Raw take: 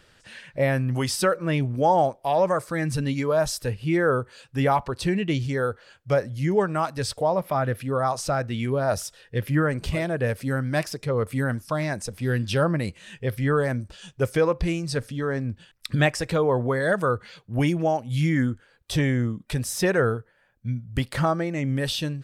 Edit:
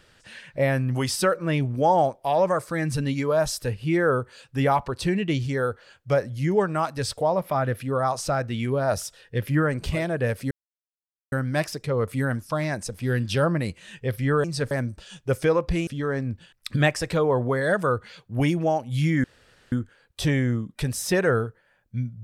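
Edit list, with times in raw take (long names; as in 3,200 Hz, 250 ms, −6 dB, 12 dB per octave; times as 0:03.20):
0:10.51: splice in silence 0.81 s
0:14.79–0:15.06: move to 0:13.63
0:18.43: splice in room tone 0.48 s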